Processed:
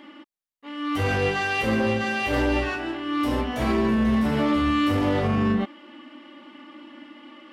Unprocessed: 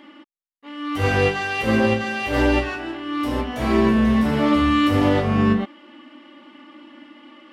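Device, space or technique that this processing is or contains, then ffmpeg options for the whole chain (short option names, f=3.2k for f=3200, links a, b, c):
soft clipper into limiter: -af "asoftclip=type=tanh:threshold=-8dB,alimiter=limit=-15dB:level=0:latency=1:release=53"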